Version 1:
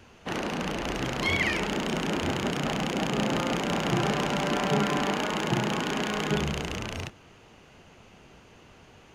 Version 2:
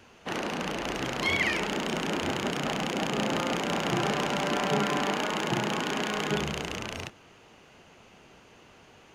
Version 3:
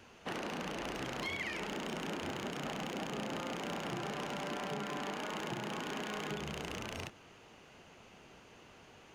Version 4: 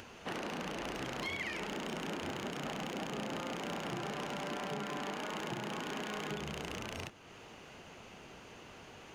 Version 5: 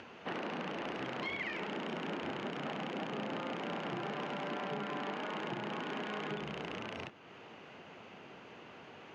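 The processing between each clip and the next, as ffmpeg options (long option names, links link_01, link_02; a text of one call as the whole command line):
ffmpeg -i in.wav -af "lowshelf=frequency=150:gain=-8.5" out.wav
ffmpeg -i in.wav -af "acompressor=threshold=-33dB:ratio=6,asoftclip=type=hard:threshold=-28.5dB,volume=-3dB" out.wav
ffmpeg -i in.wav -af "acompressor=mode=upward:threshold=-45dB:ratio=2.5" out.wav
ffmpeg -i in.wav -af "highpass=140,lowpass=3200,volume=1dB" out.wav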